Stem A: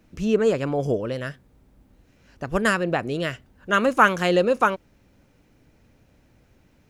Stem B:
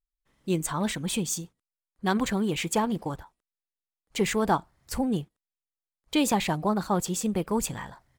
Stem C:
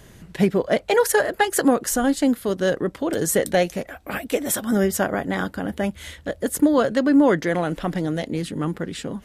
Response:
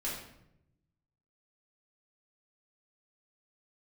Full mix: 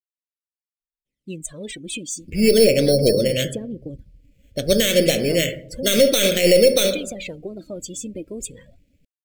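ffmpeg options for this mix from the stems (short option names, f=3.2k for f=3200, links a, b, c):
-filter_complex "[0:a]acrusher=samples=9:mix=1:aa=0.000001,asoftclip=type=tanh:threshold=-7.5dB,aeval=exprs='0.422*(cos(1*acos(clip(val(0)/0.422,-1,1)))-cos(1*PI/2))+0.0668*(cos(2*acos(clip(val(0)/0.422,-1,1)))-cos(2*PI/2))':c=same,adelay=2150,volume=3dB,asplit=2[a][b];[b]volume=-9dB[c];[1:a]equalizer=f=270:t=o:w=0.77:g=6,aphaser=in_gain=1:out_gain=1:delay=3.5:decay=0.61:speed=0.35:type=sinusoidal,adelay=800,volume=-6dB,acompressor=threshold=-28dB:ratio=6,volume=0dB[d];[3:a]atrim=start_sample=2205[e];[c][e]afir=irnorm=-1:irlink=0[f];[a][d][f]amix=inputs=3:normalize=0,afftdn=nr=18:nf=-39,firequalizer=gain_entry='entry(330,0);entry(560,7);entry(890,-26);entry(2200,7)':delay=0.05:min_phase=1,alimiter=limit=-5dB:level=0:latency=1:release=31"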